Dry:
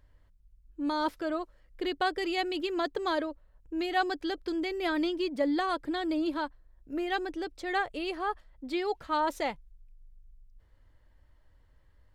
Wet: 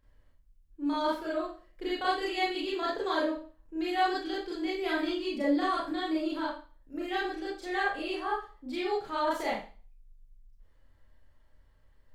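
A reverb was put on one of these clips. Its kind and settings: Schroeder reverb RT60 0.38 s, combs from 28 ms, DRR -7 dB; gain -7.5 dB

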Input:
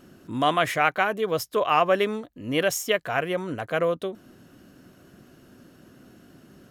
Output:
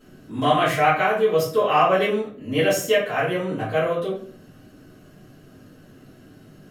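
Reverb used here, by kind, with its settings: shoebox room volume 49 m³, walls mixed, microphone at 2.2 m; gain -8.5 dB

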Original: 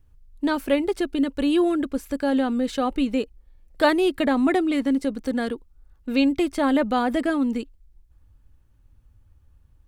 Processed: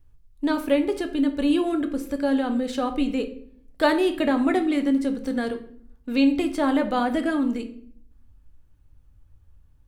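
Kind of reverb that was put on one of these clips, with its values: shoebox room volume 95 m³, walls mixed, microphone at 0.36 m; gain -2 dB

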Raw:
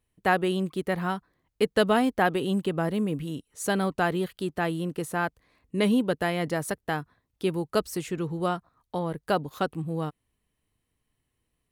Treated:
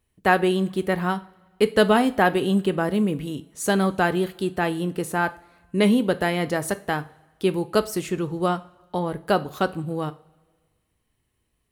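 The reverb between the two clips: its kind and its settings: two-slope reverb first 0.34 s, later 1.6 s, from -20 dB, DRR 10.5 dB; gain +4 dB

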